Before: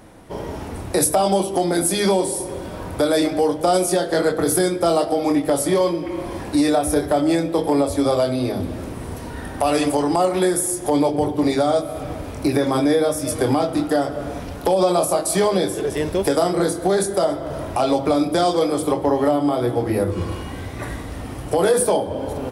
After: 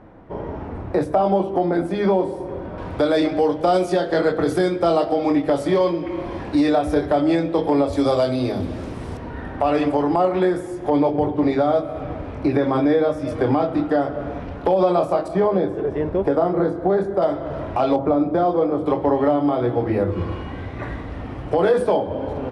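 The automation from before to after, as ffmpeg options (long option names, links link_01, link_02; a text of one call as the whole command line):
ffmpeg -i in.wav -af "asetnsamples=nb_out_samples=441:pad=0,asendcmd='2.78 lowpass f 3500;7.93 lowpass f 5900;9.17 lowpass f 2300;15.28 lowpass f 1300;17.22 lowpass f 2600;17.96 lowpass f 1200;18.86 lowpass f 2600',lowpass=1600" out.wav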